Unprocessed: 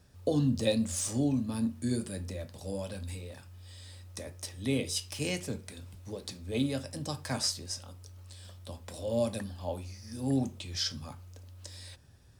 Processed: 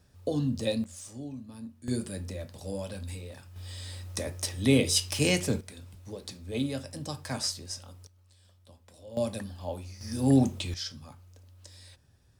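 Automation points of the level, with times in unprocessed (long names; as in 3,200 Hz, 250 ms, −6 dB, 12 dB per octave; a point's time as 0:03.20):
−1.5 dB
from 0:00.84 −11.5 dB
from 0:01.88 +1 dB
from 0:03.56 +8 dB
from 0:05.61 −0.5 dB
from 0:08.07 −12 dB
from 0:09.17 0 dB
from 0:10.01 +7.5 dB
from 0:10.74 −4.5 dB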